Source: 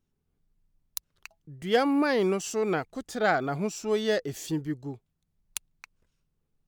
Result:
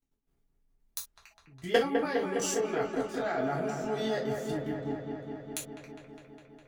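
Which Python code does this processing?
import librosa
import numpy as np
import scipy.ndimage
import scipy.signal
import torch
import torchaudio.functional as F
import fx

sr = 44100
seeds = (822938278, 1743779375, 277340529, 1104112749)

y = fx.level_steps(x, sr, step_db=19)
y = fx.echo_wet_lowpass(y, sr, ms=204, feedback_pct=77, hz=2000.0, wet_db=-5)
y = fx.rev_gated(y, sr, seeds[0], gate_ms=90, shape='falling', drr_db=-4.0)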